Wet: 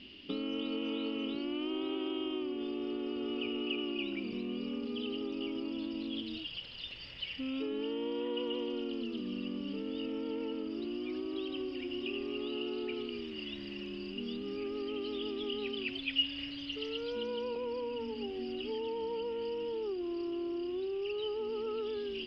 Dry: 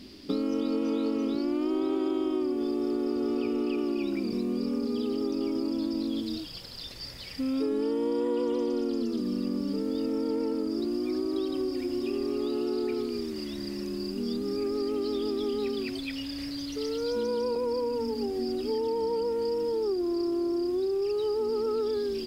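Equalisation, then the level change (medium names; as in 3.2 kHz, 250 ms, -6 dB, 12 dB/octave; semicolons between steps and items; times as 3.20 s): resonant low-pass 2.9 kHz, resonance Q 14; -8.5 dB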